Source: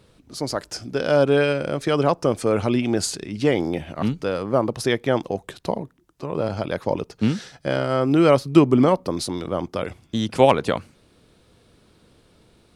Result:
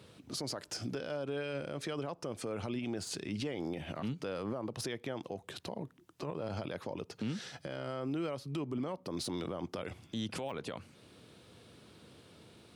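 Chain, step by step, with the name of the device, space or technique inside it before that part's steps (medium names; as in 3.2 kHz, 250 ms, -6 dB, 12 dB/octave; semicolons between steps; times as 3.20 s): broadcast voice chain (high-pass 82 Hz 24 dB/octave; de-esser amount 55%; compression 4:1, threshold -31 dBFS, peak gain reduction 19 dB; peaking EQ 3 kHz +3 dB 0.77 oct; peak limiter -27.5 dBFS, peak gain reduction 11.5 dB); trim -1 dB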